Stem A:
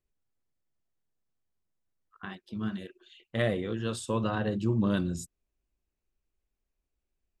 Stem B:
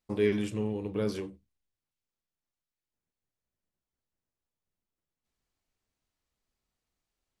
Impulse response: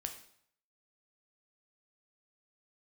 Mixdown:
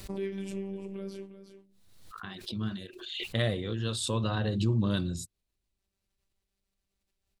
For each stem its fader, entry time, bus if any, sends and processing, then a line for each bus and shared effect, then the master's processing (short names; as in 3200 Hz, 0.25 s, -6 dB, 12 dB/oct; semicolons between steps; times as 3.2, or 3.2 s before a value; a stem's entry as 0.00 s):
-3.5 dB, 0.00 s, no send, no echo send, fifteen-band EQ 100 Hz +8 dB, 4000 Hz +11 dB, 10000 Hz +6 dB
+1.0 dB, 0.00 s, no send, echo send -14.5 dB, compressor 3:1, threshold -33 dBFS, peak gain reduction 9.5 dB; rotary speaker horn 7 Hz; robotiser 195 Hz; auto duck -12 dB, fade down 1.50 s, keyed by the first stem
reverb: off
echo: echo 0.354 s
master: backwards sustainer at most 46 dB/s